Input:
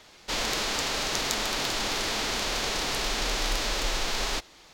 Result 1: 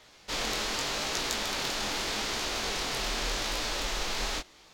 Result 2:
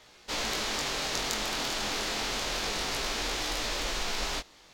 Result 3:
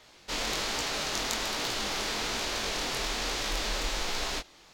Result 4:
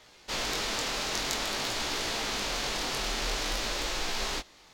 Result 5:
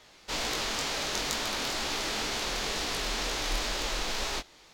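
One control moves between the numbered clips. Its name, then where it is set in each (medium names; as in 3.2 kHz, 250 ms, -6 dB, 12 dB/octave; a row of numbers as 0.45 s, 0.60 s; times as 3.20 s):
chorus, rate: 0.82 Hz, 0.29 Hz, 1.2 Hz, 0.51 Hz, 2.1 Hz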